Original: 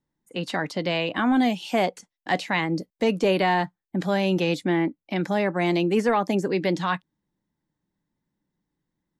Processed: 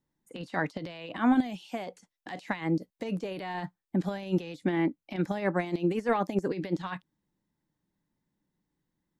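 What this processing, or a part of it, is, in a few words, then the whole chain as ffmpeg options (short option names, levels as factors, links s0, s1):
de-esser from a sidechain: -filter_complex "[0:a]asplit=2[s0][s1];[s1]highpass=f=4200:w=0.5412,highpass=f=4200:w=1.3066,apad=whole_len=405642[s2];[s0][s2]sidechaincompress=threshold=0.00178:ratio=12:attack=3.5:release=31,volume=0.891"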